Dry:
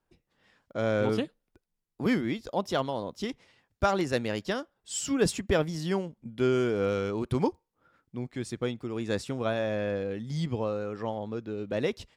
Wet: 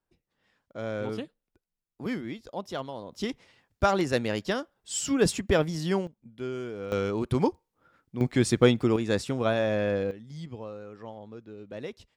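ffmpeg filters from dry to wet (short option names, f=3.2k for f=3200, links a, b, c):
-af "asetnsamples=n=441:p=0,asendcmd='3.12 volume volume 2dB;6.07 volume volume -9dB;6.92 volume volume 2dB;8.21 volume volume 11.5dB;8.96 volume volume 3.5dB;10.11 volume volume -9dB',volume=-6dB"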